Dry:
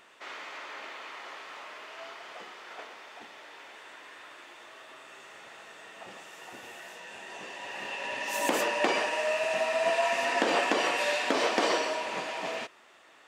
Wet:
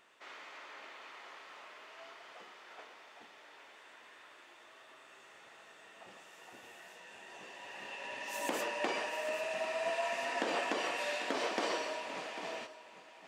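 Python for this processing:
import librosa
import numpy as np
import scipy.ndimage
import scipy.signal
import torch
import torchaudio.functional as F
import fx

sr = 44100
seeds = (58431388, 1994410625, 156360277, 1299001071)

y = x + 10.0 ** (-13.0 / 20.0) * np.pad(x, (int(796 * sr / 1000.0), 0))[:len(x)]
y = F.gain(torch.from_numpy(y), -8.5).numpy()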